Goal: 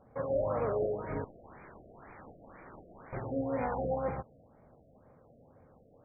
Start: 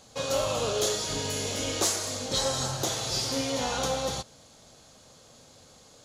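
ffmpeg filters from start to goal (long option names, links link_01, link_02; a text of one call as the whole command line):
ffmpeg -i in.wav -filter_complex "[0:a]asettb=1/sr,asplit=3[link_01][link_02][link_03];[link_01]atrim=end=1.244[link_04];[link_02]atrim=start=1.24:end=3.13,asetpts=PTS-STARTPTS,afade=type=in:duration=0.004:curve=qsin,afade=type=out:start_time=1.886:duration=0.004:curve=qsin,aeval=exprs='(mod(47.3*val(0)+1,2)-1)/47.3':channel_layout=same[link_05];[link_03]atrim=start=3.126[link_06];[link_04][link_05]acrossfade=duration=0.004:curve1=hsin:curve2=qsin[link_07];[link_07][link_06]acrossfade=duration=0.004:curve1=qsin:curve2=hsin,adynamicsmooth=sensitivity=4:basefreq=1400,afftfilt=real='re*lt(b*sr/1024,710*pow(2500/710,0.5+0.5*sin(2*PI*2*pts/sr)))':imag='im*lt(b*sr/1024,710*pow(2500/710,0.5+0.5*sin(2*PI*2*pts/sr)))':win_size=1024:overlap=0.75,volume=-2dB" out.wav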